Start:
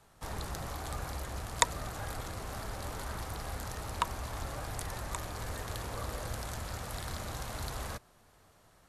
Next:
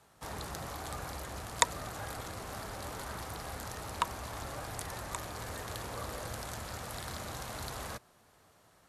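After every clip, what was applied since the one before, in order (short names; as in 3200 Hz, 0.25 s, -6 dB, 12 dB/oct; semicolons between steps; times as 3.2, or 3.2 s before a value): HPF 110 Hz 6 dB/oct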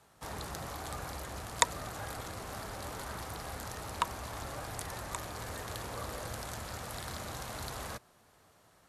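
nothing audible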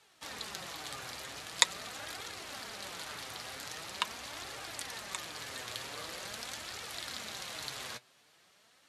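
weighting filter D; flange 0.44 Hz, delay 2.1 ms, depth 6.2 ms, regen +47%; gain -1 dB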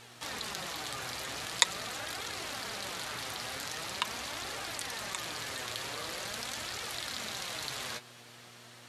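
in parallel at +1 dB: negative-ratio compressor -50 dBFS, ratio -1; on the sum: buzz 120 Hz, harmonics 29, -59 dBFS -4 dB/oct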